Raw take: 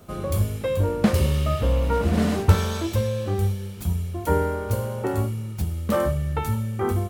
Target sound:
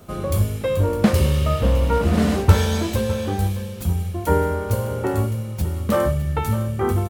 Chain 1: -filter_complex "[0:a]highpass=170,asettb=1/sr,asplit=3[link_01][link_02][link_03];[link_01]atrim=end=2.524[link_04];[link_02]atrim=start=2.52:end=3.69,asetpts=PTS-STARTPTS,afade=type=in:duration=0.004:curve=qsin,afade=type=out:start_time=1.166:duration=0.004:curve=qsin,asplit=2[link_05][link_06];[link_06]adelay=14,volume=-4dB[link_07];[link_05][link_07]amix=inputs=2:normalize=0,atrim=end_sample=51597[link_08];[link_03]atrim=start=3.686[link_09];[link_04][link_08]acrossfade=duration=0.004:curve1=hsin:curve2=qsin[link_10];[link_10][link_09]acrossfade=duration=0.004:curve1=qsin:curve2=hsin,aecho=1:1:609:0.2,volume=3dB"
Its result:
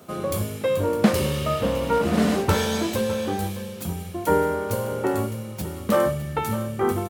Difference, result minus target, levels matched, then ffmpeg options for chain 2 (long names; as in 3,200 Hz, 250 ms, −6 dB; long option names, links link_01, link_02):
125 Hz band −6.0 dB
-filter_complex "[0:a]asettb=1/sr,asplit=3[link_01][link_02][link_03];[link_01]atrim=end=2.524[link_04];[link_02]atrim=start=2.52:end=3.69,asetpts=PTS-STARTPTS,afade=type=in:duration=0.004:curve=qsin,afade=type=out:start_time=1.166:duration=0.004:curve=qsin,asplit=2[link_05][link_06];[link_06]adelay=14,volume=-4dB[link_07];[link_05][link_07]amix=inputs=2:normalize=0,atrim=end_sample=51597[link_08];[link_03]atrim=start=3.686[link_09];[link_04][link_08]acrossfade=duration=0.004:curve1=hsin:curve2=qsin[link_10];[link_10][link_09]acrossfade=duration=0.004:curve1=qsin:curve2=hsin,aecho=1:1:609:0.2,volume=3dB"